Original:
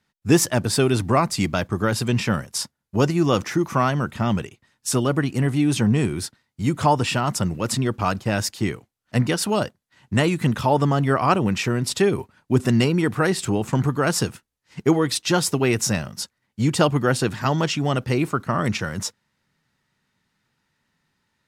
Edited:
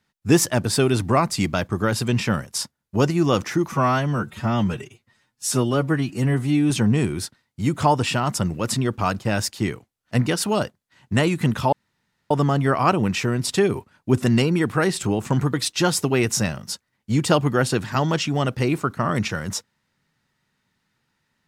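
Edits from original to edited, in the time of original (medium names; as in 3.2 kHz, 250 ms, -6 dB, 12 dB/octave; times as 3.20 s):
3.72–5.71 s: stretch 1.5×
10.73 s: insert room tone 0.58 s
13.96–15.03 s: delete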